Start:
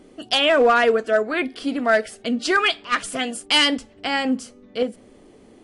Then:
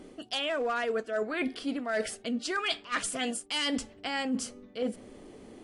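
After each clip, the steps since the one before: dynamic bell 7.8 kHz, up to +4 dB, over -39 dBFS, Q 1; reverse; compression 10:1, threshold -28 dBFS, peak gain reduction 15.5 dB; reverse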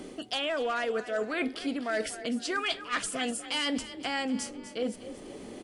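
frequency-shifting echo 246 ms, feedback 38%, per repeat +32 Hz, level -15 dB; three bands compressed up and down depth 40%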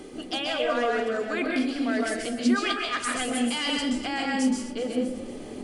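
reverberation RT60 0.55 s, pre-delay 124 ms, DRR -1 dB

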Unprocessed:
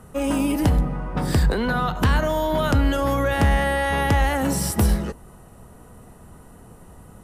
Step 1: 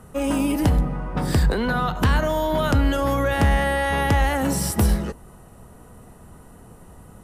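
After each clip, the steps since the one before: no audible change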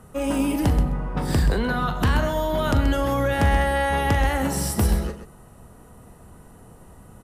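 multi-tap echo 41/130 ms -12/-10 dB; trim -2 dB

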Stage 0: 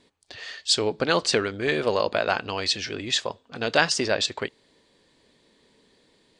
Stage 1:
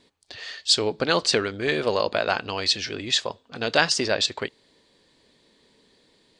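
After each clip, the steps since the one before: peaking EQ 4.3 kHz +3 dB 0.77 oct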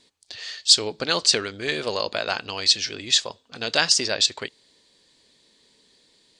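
peaking EQ 7.1 kHz +11 dB 2.4 oct; trim -4.5 dB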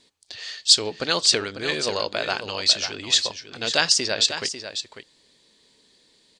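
delay 546 ms -10 dB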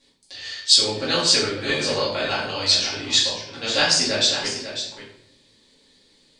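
simulated room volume 140 m³, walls mixed, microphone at 2.3 m; trim -6.5 dB

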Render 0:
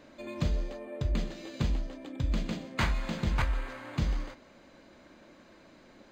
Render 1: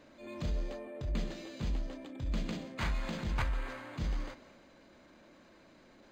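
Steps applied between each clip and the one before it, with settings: transient shaper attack -7 dB, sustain +3 dB; trim -3.5 dB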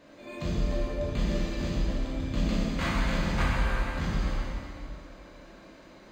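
plate-style reverb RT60 2.5 s, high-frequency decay 0.85×, DRR -6.5 dB; trim +1.5 dB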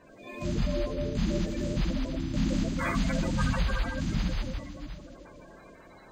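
coarse spectral quantiser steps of 30 dB

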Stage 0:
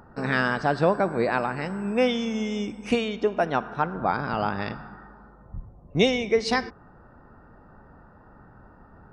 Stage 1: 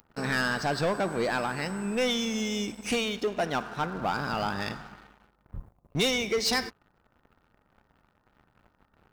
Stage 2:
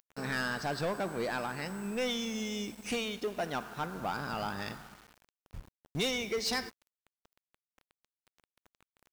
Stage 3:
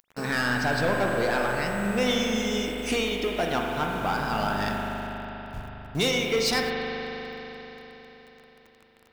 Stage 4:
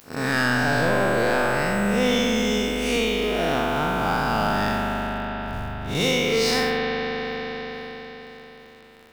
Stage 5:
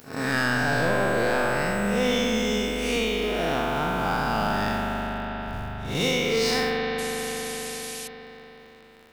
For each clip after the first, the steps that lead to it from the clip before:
pre-emphasis filter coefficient 0.8; waveshaping leveller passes 3
word length cut 8-bit, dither none; trim -6 dB
reverberation RT60 4.3 s, pre-delay 40 ms, DRR 0 dB; trim +6.5 dB
spectral blur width 142 ms; in parallel at +3 dB: compression, threshold -37 dBFS, peak gain reduction 14 dB; on the sum: trim +3 dB
pre-echo 102 ms -15 dB; painted sound noise, 6.98–8.08 s, 2.2–12 kHz -35 dBFS; trim -2.5 dB

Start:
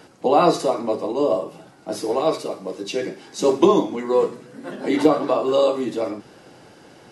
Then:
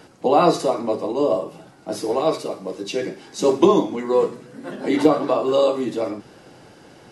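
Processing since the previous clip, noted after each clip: bass shelf 110 Hz +5 dB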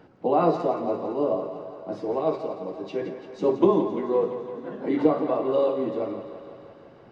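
tape spacing loss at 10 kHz 34 dB; thinning echo 170 ms, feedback 73%, high-pass 260 Hz, level -10 dB; trim -3.5 dB

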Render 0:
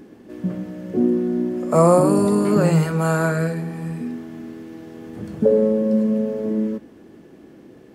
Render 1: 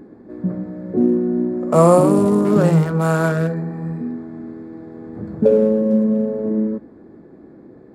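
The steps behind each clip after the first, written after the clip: local Wiener filter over 15 samples; trim +2.5 dB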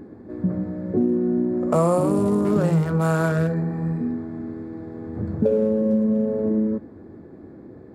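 peaking EQ 89 Hz +11.5 dB 0.58 oct; compression 3:1, threshold -18 dBFS, peak gain reduction 8.5 dB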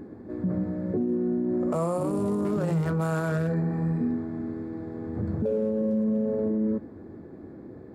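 peak limiter -18.5 dBFS, peak gain reduction 9 dB; trim -1 dB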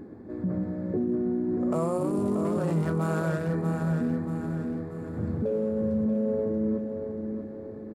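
feedback delay 633 ms, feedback 46%, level -6.5 dB; trim -1.5 dB

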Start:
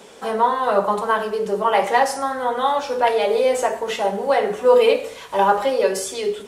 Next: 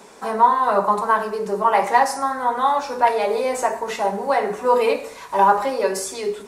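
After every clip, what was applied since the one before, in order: graphic EQ with 31 bands 100 Hz -10 dB, 500 Hz -6 dB, 1 kHz +5 dB, 3.15 kHz -10 dB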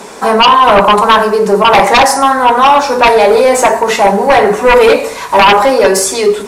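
sine folder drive 11 dB, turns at -2.5 dBFS; trim +1 dB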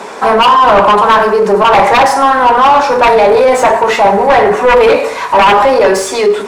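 overdrive pedal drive 13 dB, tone 1.7 kHz, clips at -1 dBFS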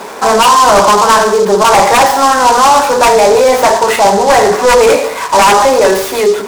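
delay time shaken by noise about 5.2 kHz, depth 0.036 ms

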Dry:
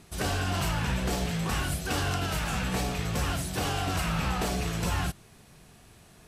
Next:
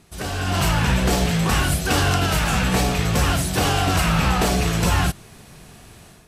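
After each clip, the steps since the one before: level rider gain up to 10 dB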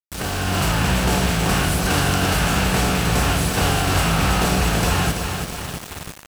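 spectral levelling over time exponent 0.6; feedback delay 333 ms, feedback 57%, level -6.5 dB; small samples zeroed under -24 dBFS; trim -3.5 dB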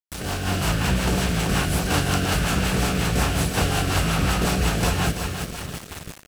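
rotary cabinet horn 5.5 Hz; trim -1 dB

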